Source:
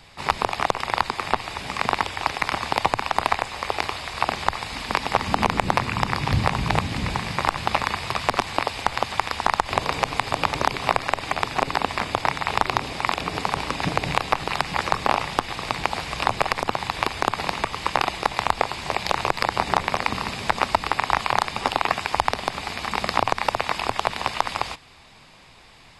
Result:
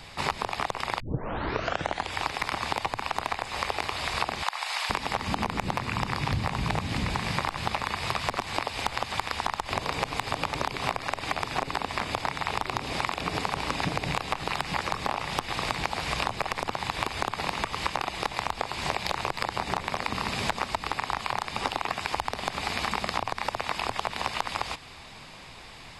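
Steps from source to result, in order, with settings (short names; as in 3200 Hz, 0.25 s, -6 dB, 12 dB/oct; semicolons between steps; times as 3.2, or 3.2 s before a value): soft clip -7 dBFS, distortion -14 dB; 1 tape start 1.12 s; 4.43–4.9 HPF 680 Hz 24 dB/oct; compressor 6:1, threshold -29 dBFS, peak gain reduction 13.5 dB; gain +4 dB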